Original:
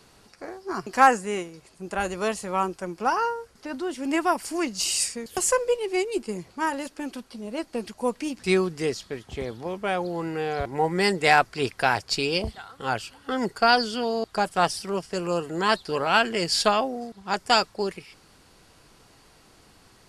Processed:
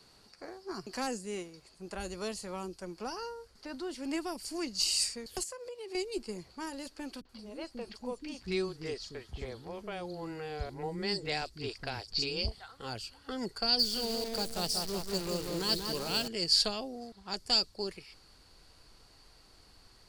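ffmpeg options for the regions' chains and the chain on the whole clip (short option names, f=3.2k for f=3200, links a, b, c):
-filter_complex "[0:a]asettb=1/sr,asplit=3[a][b][c];[a]atrim=end=5.434[d];[b]atrim=start=5.43:end=5.95,asetpts=PTS-STARTPTS,afade=t=in:d=0.004:c=qsin,afade=t=out:st=0.516:d=0.004:c=qsin,highpass=f=78:w=0.5412,highpass=f=78:w=1.3066,acompressor=threshold=-31dB:ratio=16:attack=3.2:release=140:knee=1:detection=peak[e];[c]atrim=start=5.946[f];[d][e]acrossfade=d=0.004:c1=hsin:c2=qsin[g];[g][f]acrossfade=d=0.004:c1=qsin:c2=hsin,asettb=1/sr,asplit=3[h][i][j];[h]atrim=end=7.214[k];[i]atrim=start=7.21:end=12.68,asetpts=PTS-STARTPTS,afade=t=in:d=0.004:c=qsin,afade=t=out:st=5.466:d=0.004:c=qsin,acrossover=split=320|4700[l][m][n];[m]adelay=40[o];[n]adelay=80[p];[l][o][p]amix=inputs=3:normalize=0,atrim=end_sample=241227,acrossover=split=7000[q][r];[r]acompressor=threshold=-60dB:ratio=4:attack=1:release=60[s];[q][s]amix=inputs=2:normalize=0[t];[j]atrim=start=12.676[u];[k][t]acrossfade=d=0.004:c1=hsin:c2=qsin[v];[v][u]acrossfade=d=0.004:c1=qsin:c2=hsin,asettb=1/sr,asplit=3[w][x][y];[w]atrim=end=13.794[z];[x]atrim=start=13.79:end=16.28,asetpts=PTS-STARTPTS,afade=t=in:d=0.004:c=qsin,afade=t=out:st=2.486:d=0.004:c=qsin,bass=f=250:g=2,treble=f=4k:g=5,asplit=2[aa][ab];[ab]adelay=183,lowpass=f=1.6k:p=1,volume=-4dB,asplit=2[ac][ad];[ad]adelay=183,lowpass=f=1.6k:p=1,volume=0.53,asplit=2[ae][af];[af]adelay=183,lowpass=f=1.6k:p=1,volume=0.53,asplit=2[ag][ah];[ah]adelay=183,lowpass=f=1.6k:p=1,volume=0.53,asplit=2[ai][aj];[aj]adelay=183,lowpass=f=1.6k:p=1,volume=0.53,asplit=2[ak][al];[al]adelay=183,lowpass=f=1.6k:p=1,volume=0.53,asplit=2[am][an];[an]adelay=183,lowpass=f=1.6k:p=1,volume=0.53[ao];[aa][ac][ae][ag][ai][ak][am][ao]amix=inputs=8:normalize=0,atrim=end_sample=109809,acrusher=bits=6:dc=4:mix=0:aa=0.000001[ap];[y]atrim=start=16.276[aq];[z][ap]acrossfade=d=0.004:c1=hsin:c2=qsin[ar];[ar][aq]acrossfade=d=0.004:c1=qsin:c2=hsin,asubboost=boost=3:cutoff=77,acrossover=split=480|3000[as][at][au];[at]acompressor=threshold=-36dB:ratio=6[av];[as][av][au]amix=inputs=3:normalize=0,equalizer=f=4.5k:t=o:w=0.31:g=10,volume=-7.5dB"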